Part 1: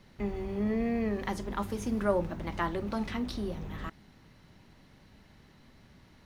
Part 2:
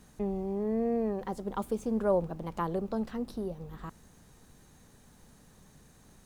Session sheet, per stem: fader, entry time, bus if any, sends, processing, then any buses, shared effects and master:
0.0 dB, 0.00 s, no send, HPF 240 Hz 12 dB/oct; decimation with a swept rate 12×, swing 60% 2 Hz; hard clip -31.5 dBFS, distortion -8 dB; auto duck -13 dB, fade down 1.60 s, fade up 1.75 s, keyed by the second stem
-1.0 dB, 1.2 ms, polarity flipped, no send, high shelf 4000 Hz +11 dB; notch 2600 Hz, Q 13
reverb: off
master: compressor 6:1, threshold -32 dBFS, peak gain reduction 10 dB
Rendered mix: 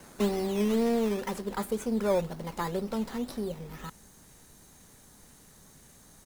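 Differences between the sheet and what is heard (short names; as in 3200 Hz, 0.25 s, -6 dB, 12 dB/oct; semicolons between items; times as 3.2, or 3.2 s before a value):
stem 1 0.0 dB -> +10.0 dB; master: missing compressor 6:1, threshold -32 dBFS, peak gain reduction 10 dB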